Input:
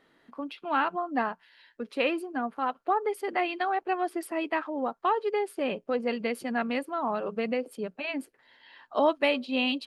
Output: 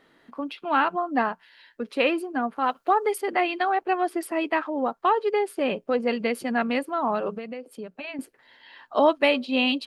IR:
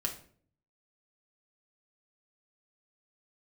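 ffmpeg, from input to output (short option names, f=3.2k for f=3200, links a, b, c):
-filter_complex "[0:a]asettb=1/sr,asplit=3[a][b][c];[a]atrim=end=2.644[d];[b]atrim=start=2.64:end=3.18,asetpts=PTS-STARTPTS,afade=t=in:d=0.004:c=qsin,afade=t=out:st=0.536:d=0.004:c=qsin,highshelf=f=3.2k:g=9[e];[c]atrim=start=3.176[f];[d][e]acrossfade=d=0.004:c1=hsin:c2=qsin[g];[g][f]acrossfade=d=0.004:c1=qsin:c2=hsin,asettb=1/sr,asplit=3[h][i][j];[h]atrim=end=7.374[k];[i]atrim=start=7.37:end=8.19,asetpts=PTS-STARTPTS,afade=t=in:d=0.004:c=qsin,afade=t=out:st=0.816:d=0.004:c=qsin,acompressor=threshold=-39dB:ratio=4[l];[j]atrim=start=8.186[m];[k][l]acrossfade=d=0.004:c1=hsin:c2=qsin[n];[n][m]acrossfade=d=0.004:c1=qsin:c2=hsin,volume=4.5dB"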